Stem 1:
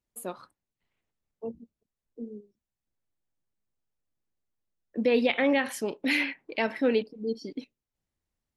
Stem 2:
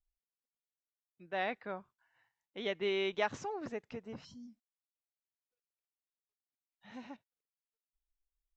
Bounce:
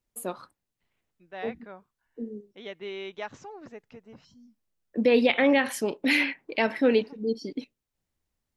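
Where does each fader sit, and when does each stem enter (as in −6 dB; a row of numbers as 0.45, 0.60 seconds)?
+3.0, −3.5 decibels; 0.00, 0.00 seconds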